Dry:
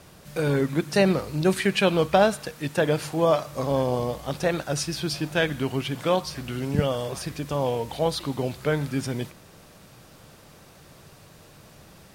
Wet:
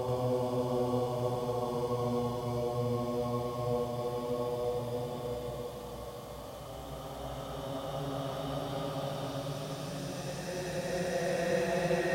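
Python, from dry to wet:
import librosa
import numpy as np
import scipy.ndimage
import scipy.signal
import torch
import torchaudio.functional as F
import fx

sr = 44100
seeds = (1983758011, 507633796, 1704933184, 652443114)

p1 = fx.paulstretch(x, sr, seeds[0], factor=22.0, window_s=0.25, from_s=3.91)
p2 = p1 + fx.echo_single(p1, sr, ms=84, db=-3.5, dry=0)
y = F.gain(torch.from_numpy(p2), -8.5).numpy()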